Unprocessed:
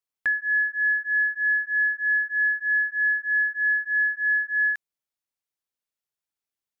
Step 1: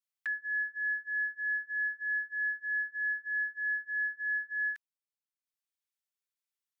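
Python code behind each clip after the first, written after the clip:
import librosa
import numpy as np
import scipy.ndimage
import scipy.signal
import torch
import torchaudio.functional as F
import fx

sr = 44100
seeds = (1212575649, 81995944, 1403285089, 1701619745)

y = scipy.signal.sosfilt(scipy.signal.butter(2, 1400.0, 'highpass', fs=sr, output='sos'), x)
y = y + 0.95 * np.pad(y, (int(4.5 * sr / 1000.0), 0))[:len(y)]
y = fx.transient(y, sr, attack_db=-3, sustain_db=-7)
y = F.gain(torch.from_numpy(y), -6.0).numpy()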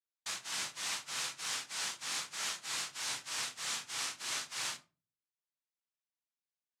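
y = fx.noise_vocoder(x, sr, seeds[0], bands=2)
y = fx.room_shoebox(y, sr, seeds[1], volume_m3=150.0, walls='furnished', distance_m=0.68)
y = F.gain(torch.from_numpy(y), -6.5).numpy()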